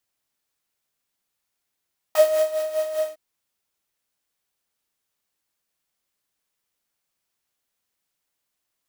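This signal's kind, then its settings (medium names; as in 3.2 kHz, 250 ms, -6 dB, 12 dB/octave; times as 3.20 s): synth patch with tremolo D#5, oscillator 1 triangle, interval 0 st, detune 24 cents, sub -23 dB, noise -9 dB, filter highpass, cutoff 300 Hz, Q 2.7, filter envelope 2 oct, filter decay 0.05 s, filter sustain 45%, attack 4.8 ms, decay 0.37 s, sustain -10 dB, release 0.08 s, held 0.93 s, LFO 5 Hz, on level 9 dB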